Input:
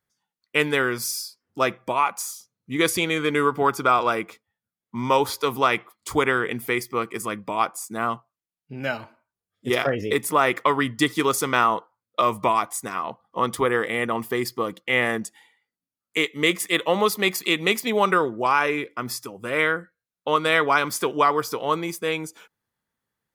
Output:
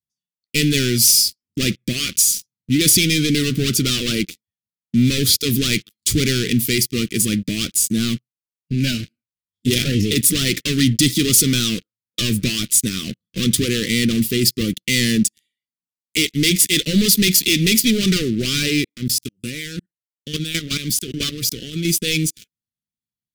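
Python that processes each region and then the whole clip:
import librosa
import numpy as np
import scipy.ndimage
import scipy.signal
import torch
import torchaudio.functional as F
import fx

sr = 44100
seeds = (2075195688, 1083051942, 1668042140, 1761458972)

y = fx.chain(x, sr, fx.level_steps(step_db=18),
    fx.notch_cascade(direction='falling', hz=1.6), at=(18.84, 21.85))
y = fx.leveller(y, sr, passes=5)
y = scipy.signal.sosfilt(scipy.signal.cheby1(2, 1.0, [220.0, 3500.0], 'bandstop', fs=sr, output='sos'), y)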